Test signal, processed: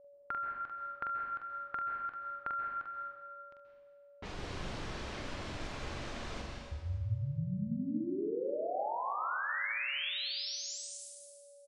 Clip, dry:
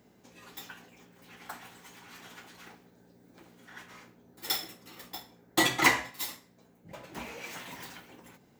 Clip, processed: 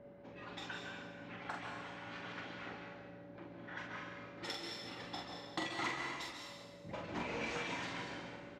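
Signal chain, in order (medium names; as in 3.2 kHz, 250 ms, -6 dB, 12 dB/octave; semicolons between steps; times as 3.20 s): whistle 570 Hz -59 dBFS; reverb removal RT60 0.64 s; compression 8:1, threshold -40 dBFS; level-controlled noise filter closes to 1.6 kHz, open at -39.5 dBFS; distance through air 110 m; on a send: early reflections 44 ms -4 dB, 71 ms -13.5 dB; on the sum: plate-style reverb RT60 1.5 s, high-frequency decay 0.95×, pre-delay 120 ms, DRR 1 dB; trim +2.5 dB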